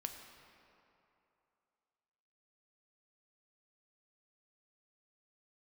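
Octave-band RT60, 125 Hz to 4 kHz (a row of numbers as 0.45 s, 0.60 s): 2.5 s, 2.6 s, 2.8 s, 2.9 s, 2.3 s, 1.7 s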